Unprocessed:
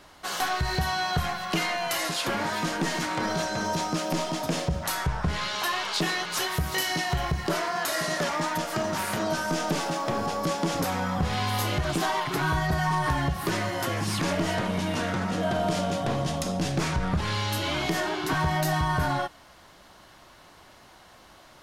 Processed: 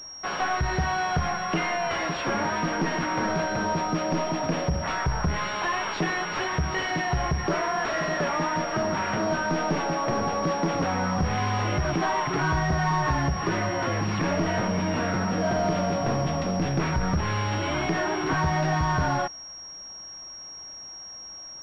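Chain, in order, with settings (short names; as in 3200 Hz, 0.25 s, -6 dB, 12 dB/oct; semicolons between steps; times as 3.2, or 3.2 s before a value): in parallel at -6.5 dB: companded quantiser 2-bit; on the sum: pulse-width modulation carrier 5600 Hz; gain -1.5 dB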